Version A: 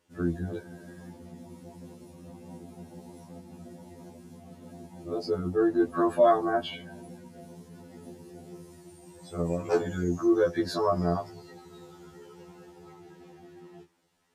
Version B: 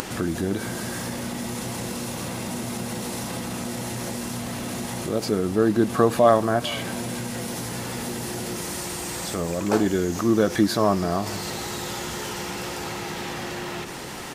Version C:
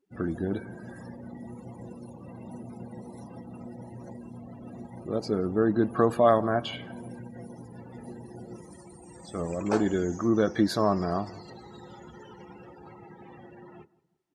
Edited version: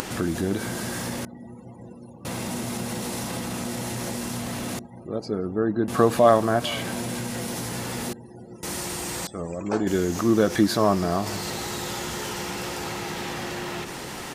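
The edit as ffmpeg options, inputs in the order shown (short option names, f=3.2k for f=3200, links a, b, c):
-filter_complex "[2:a]asplit=4[a][b][c][d];[1:a]asplit=5[e][f][g][h][i];[e]atrim=end=1.252[j];[a]atrim=start=1.248:end=2.252[k];[f]atrim=start=2.248:end=4.792[l];[b]atrim=start=4.788:end=5.882[m];[g]atrim=start=5.878:end=8.132[n];[c]atrim=start=8.128:end=8.632[o];[h]atrim=start=8.628:end=9.272[p];[d]atrim=start=9.268:end=9.872[q];[i]atrim=start=9.868[r];[j][k]acrossfade=d=0.004:c1=hsin:c2=hsin[s];[s][l]acrossfade=d=0.004:c1=hsin:c2=hsin[t];[t][m]acrossfade=d=0.004:c1=hsin:c2=hsin[u];[u][n]acrossfade=d=0.004:c1=hsin:c2=hsin[v];[v][o]acrossfade=d=0.004:c1=hsin:c2=hsin[w];[w][p]acrossfade=d=0.004:c1=hsin:c2=hsin[x];[x][q]acrossfade=d=0.004:c1=hsin:c2=hsin[y];[y][r]acrossfade=d=0.004:c1=hsin:c2=hsin"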